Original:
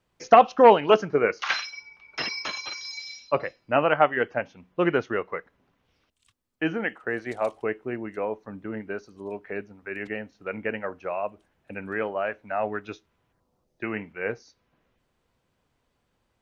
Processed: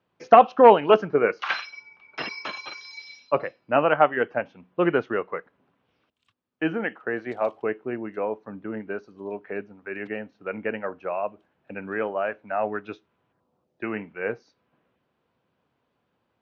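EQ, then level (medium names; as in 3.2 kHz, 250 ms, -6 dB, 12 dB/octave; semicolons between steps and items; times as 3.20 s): band-pass 130–3000 Hz; peaking EQ 2 kHz -4 dB 0.33 oct; +1.5 dB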